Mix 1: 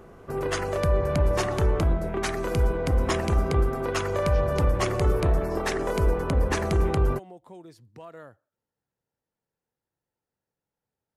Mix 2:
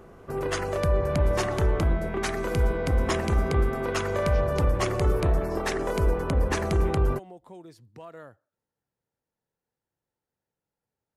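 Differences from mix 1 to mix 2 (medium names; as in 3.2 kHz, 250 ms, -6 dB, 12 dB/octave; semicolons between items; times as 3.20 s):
first sound: send -9.0 dB; second sound +7.5 dB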